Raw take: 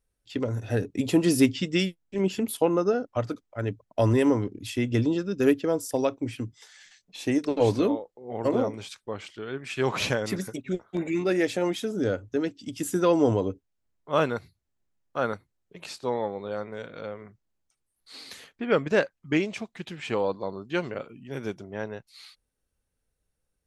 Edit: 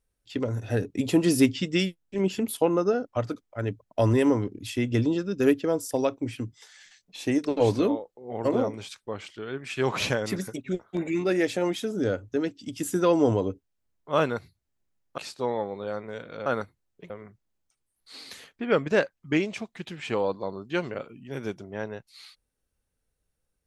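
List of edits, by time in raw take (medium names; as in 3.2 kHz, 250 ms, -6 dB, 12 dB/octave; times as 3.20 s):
15.18–15.82 s: move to 17.10 s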